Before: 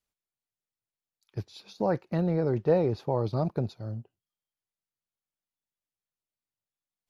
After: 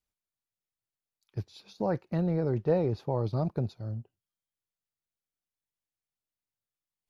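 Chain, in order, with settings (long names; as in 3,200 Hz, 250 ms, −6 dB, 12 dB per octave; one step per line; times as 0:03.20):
low-shelf EQ 150 Hz +6 dB
level −3.5 dB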